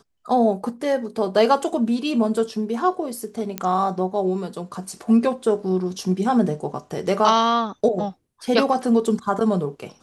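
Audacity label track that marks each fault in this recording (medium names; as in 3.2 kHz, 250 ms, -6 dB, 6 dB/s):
3.580000	3.580000	pop -9 dBFS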